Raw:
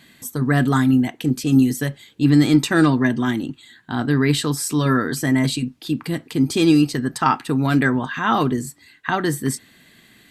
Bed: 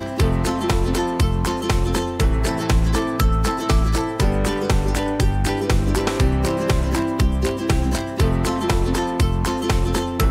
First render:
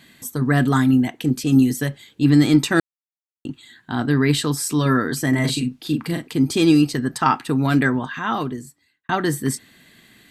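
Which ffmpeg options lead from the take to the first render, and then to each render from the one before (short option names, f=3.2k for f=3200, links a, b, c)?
-filter_complex "[0:a]asettb=1/sr,asplit=3[a][b][c];[a]atrim=end=5.294[d];[b]atrim=start=5.29:end=6.27,asetpts=PTS-STARTPTS,afade=t=in:d=0.004:c=qsin,afade=t=out:st=0.976:d=0.004:c=qsin,asplit=2[e][f];[f]adelay=40,volume=-6dB[g];[e][g]amix=inputs=2:normalize=0,atrim=end_sample=43218[h];[c]atrim=start=6.266[i];[d][h]acrossfade=d=0.004:c1=hsin:c2=qsin[j];[j][i]acrossfade=d=0.004:c1=qsin:c2=hsin,asplit=4[k][l][m][n];[k]atrim=end=2.8,asetpts=PTS-STARTPTS,afade=t=out:st=2.796:d=0.004:c=hsin[o];[l]atrim=start=2.8:end=3.45,asetpts=PTS-STARTPTS,volume=0[p];[m]atrim=start=3.45:end=9.09,asetpts=PTS-STARTPTS,afade=t=in:d=0.004:c=hsin,afade=t=out:st=4.33:d=1.31[q];[n]atrim=start=9.09,asetpts=PTS-STARTPTS,afade=t=in:d=0.004:c=hsin[r];[o][p][q][r]concat=n=4:v=0:a=1"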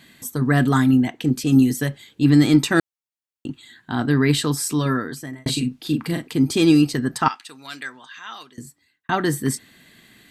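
-filter_complex "[0:a]asettb=1/sr,asplit=3[a][b][c];[a]atrim=end=0.974[d];[b]atrim=start=0.97:end=1.37,asetpts=PTS-STARTPTS,afade=t=in:d=0.004:c=qsin,afade=t=out:st=0.396:d=0.004:c=qsin,equalizer=f=11k:t=o:w=0.61:g=-7.5[e];[c]atrim=start=1.366[f];[d][e]acrossfade=d=0.004:c1=hsin:c2=qsin[g];[g][f]acrossfade=d=0.004:c1=qsin:c2=hsin,asettb=1/sr,asplit=3[h][i][j];[h]atrim=end=7.284[k];[i]atrim=start=7.28:end=8.58,asetpts=PTS-STARTPTS,afade=t=in:d=0.004:c=qsin,afade=t=out:st=1.296:d=0.004:c=qsin,bandpass=f=5.3k:t=q:w=0.96[l];[j]atrim=start=8.576[m];[k][l]acrossfade=d=0.004:c1=hsin:c2=qsin[n];[n][m]acrossfade=d=0.004:c1=qsin:c2=hsin,asplit=2[o][p];[o]atrim=end=5.46,asetpts=PTS-STARTPTS,afade=t=out:st=4.64:d=0.82[q];[p]atrim=start=5.46,asetpts=PTS-STARTPTS,afade=t=in:d=0.004:c=hsin[r];[q][r]concat=n=2:v=0:a=1"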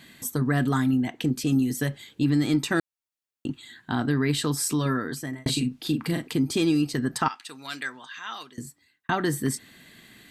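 -af "acompressor=threshold=-23dB:ratio=2.5"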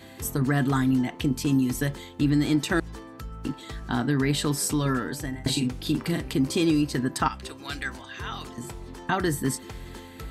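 -filter_complex "[1:a]volume=-21dB[a];[0:a][a]amix=inputs=2:normalize=0"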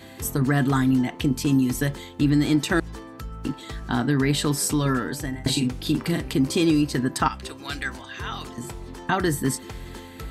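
-af "volume=2.5dB"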